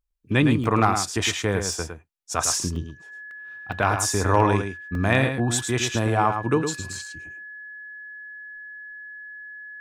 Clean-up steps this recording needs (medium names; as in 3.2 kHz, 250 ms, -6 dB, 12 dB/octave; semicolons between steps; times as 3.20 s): clip repair -5.5 dBFS; band-stop 1.7 kHz, Q 30; interpolate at 0.64/1.73/2.76/3.31/3.72/4.95/6.93 s, 1.3 ms; inverse comb 108 ms -7 dB